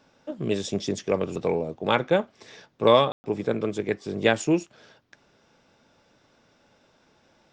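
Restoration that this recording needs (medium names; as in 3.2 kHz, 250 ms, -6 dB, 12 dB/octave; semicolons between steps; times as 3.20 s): room tone fill 3.12–3.24 s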